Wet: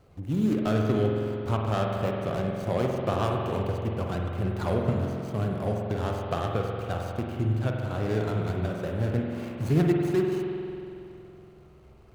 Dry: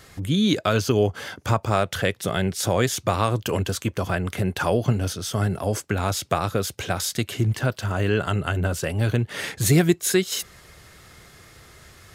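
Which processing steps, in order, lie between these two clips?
median filter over 25 samples; spring tank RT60 2.7 s, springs 46 ms, chirp 75 ms, DRR 0 dB; gain -6 dB

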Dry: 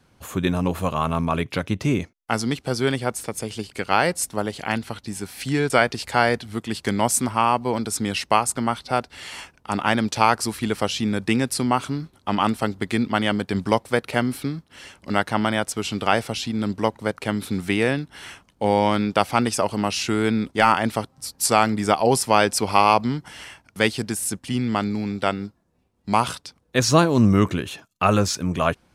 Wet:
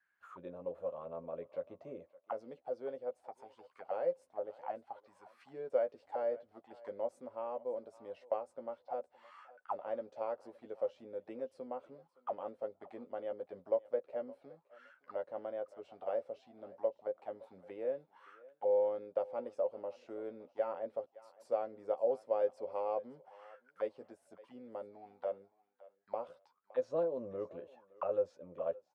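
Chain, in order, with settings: doubler 12 ms -6 dB; auto-wah 540–1700 Hz, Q 13, down, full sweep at -20.5 dBFS; thinning echo 0.566 s, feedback 20%, high-pass 570 Hz, level -18 dB; gain -4 dB

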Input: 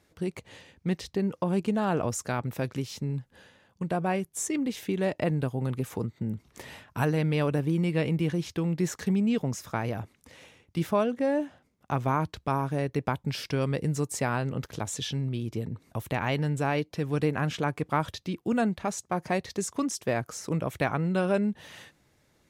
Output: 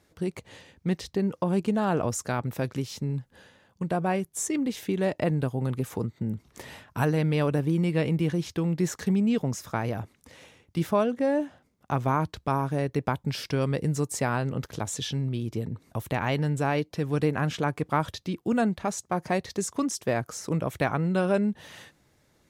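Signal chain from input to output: bell 2500 Hz -2 dB; gain +1.5 dB

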